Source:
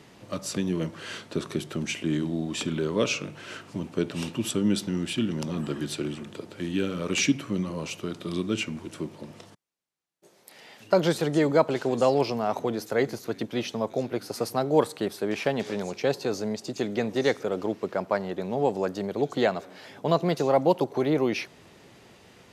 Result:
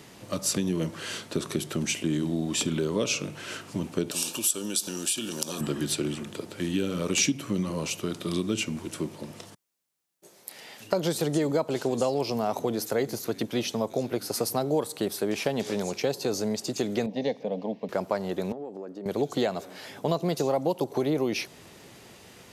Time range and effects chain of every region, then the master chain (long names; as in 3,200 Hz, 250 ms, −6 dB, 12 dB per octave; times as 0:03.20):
0:04.11–0:05.61: bass and treble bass −15 dB, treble +14 dB + downward compressor 4 to 1, threshold −31 dBFS + Butterworth band-reject 2,000 Hz, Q 5.9
0:17.06–0:17.89: high-frequency loss of the air 300 metres + phaser with its sweep stopped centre 360 Hz, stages 6
0:18.52–0:19.06: resonant band-pass 290 Hz, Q 1.3 + spectral tilt +2.5 dB per octave + downward compressor 10 to 1, threshold −35 dBFS
whole clip: dynamic equaliser 1,700 Hz, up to −5 dB, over −40 dBFS, Q 0.98; downward compressor, threshold −24 dBFS; high-shelf EQ 6,900 Hz +11 dB; level +2 dB